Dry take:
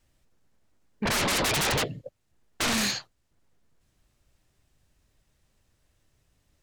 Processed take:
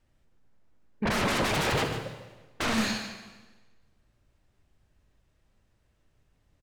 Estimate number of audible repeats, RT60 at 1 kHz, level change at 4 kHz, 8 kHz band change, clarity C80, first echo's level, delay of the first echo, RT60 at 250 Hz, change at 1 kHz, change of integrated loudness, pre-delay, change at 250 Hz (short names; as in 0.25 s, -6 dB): 1, 1.3 s, -4.5 dB, -8.0 dB, 7.0 dB, -11.5 dB, 0.148 s, 1.3 s, +0.5 dB, -2.0 dB, 20 ms, +2.0 dB